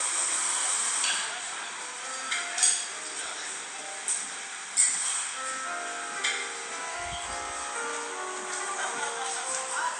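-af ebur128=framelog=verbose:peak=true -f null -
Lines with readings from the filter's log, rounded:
Integrated loudness:
  I:         -28.7 LUFS
  Threshold: -38.7 LUFS
Loudness range:
  LRA:         4.9 LU
  Threshold: -48.9 LUFS
  LRA low:   -32.0 LUFS
  LRA high:  -27.0 LUFS
True peak:
  Peak:       -8.0 dBFS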